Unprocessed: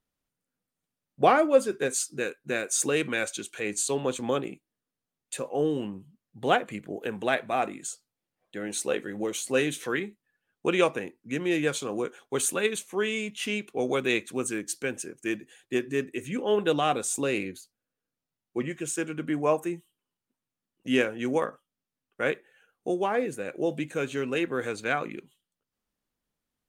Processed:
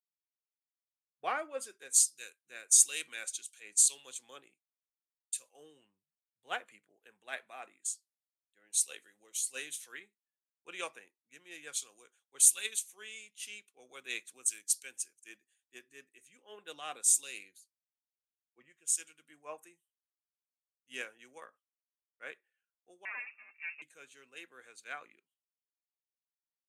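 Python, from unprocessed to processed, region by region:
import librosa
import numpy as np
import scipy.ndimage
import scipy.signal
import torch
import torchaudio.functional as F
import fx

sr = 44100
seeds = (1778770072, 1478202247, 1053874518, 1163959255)

y = fx.chain(x, sr, fx.lower_of_two(delay_ms=5.3),
    fx.freq_invert(carrier_hz=2700), at=(23.05, 23.82))
y = scipy.signal.sosfilt(scipy.signal.butter(4, 12000.0, 'lowpass', fs=sr, output='sos'), y)
y = np.diff(y, prepend=0.0)
y = fx.band_widen(y, sr, depth_pct=100)
y = F.gain(torch.from_numpy(y), -4.0).numpy()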